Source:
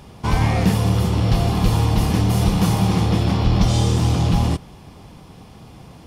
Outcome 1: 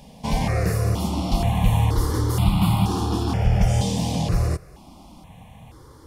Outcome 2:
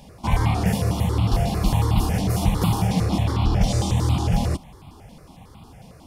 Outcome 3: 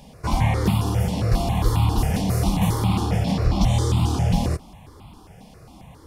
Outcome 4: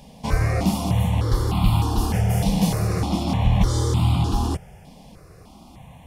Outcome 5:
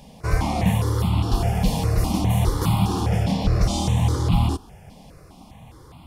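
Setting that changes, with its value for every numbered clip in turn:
stepped phaser, rate: 2.1 Hz, 11 Hz, 7.4 Hz, 3.3 Hz, 4.9 Hz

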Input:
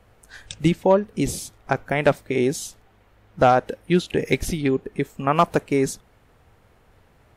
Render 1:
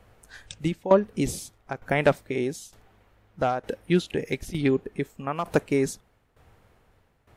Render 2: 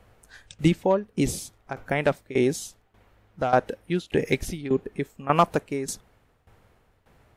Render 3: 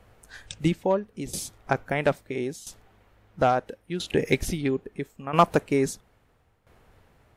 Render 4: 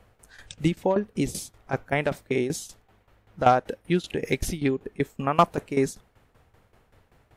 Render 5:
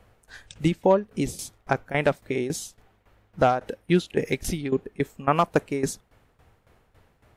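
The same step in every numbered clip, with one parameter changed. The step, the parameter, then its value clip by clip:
tremolo, rate: 1.1 Hz, 1.7 Hz, 0.75 Hz, 5.2 Hz, 3.6 Hz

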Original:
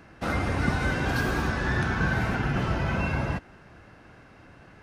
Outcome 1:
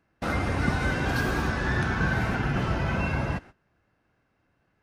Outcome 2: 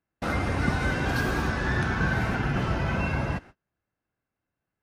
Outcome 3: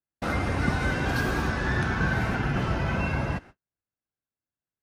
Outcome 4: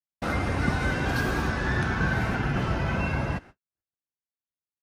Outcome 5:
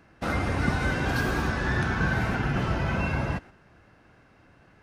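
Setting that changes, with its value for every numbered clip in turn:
gate, range: -20 dB, -35 dB, -48 dB, -60 dB, -6 dB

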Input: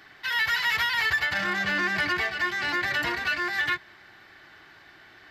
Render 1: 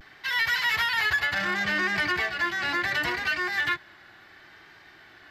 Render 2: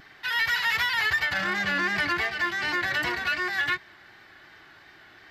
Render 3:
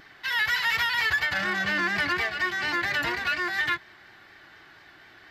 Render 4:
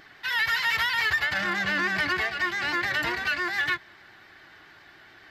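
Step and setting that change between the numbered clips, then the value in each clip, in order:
vibrato, rate: 0.69 Hz, 2.7 Hz, 4.2 Hz, 7.1 Hz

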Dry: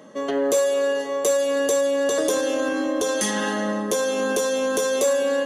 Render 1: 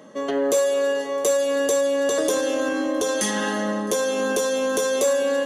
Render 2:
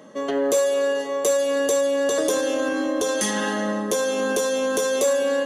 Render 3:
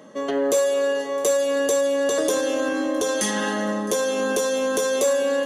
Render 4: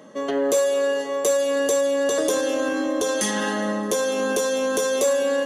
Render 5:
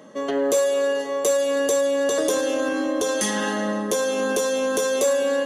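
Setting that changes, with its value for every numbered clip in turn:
feedback echo behind a high-pass, time: 331 ms, 72 ms, 662 ms, 207 ms, 107 ms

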